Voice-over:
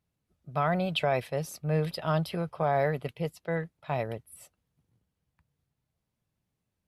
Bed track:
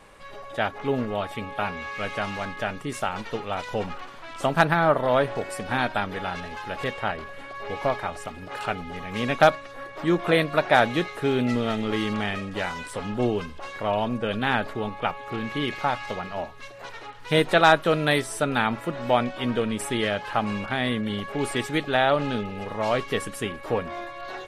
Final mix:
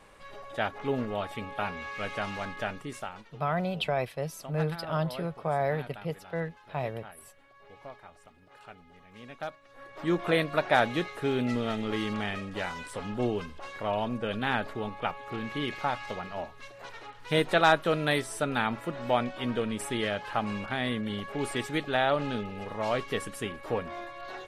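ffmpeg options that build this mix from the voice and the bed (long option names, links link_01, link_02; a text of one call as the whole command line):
ffmpeg -i stem1.wav -i stem2.wav -filter_complex "[0:a]adelay=2850,volume=-2dB[link_01];[1:a]volume=11dB,afade=type=out:start_time=2.66:duration=0.64:silence=0.158489,afade=type=in:start_time=9.6:duration=0.52:silence=0.16788[link_02];[link_01][link_02]amix=inputs=2:normalize=0" out.wav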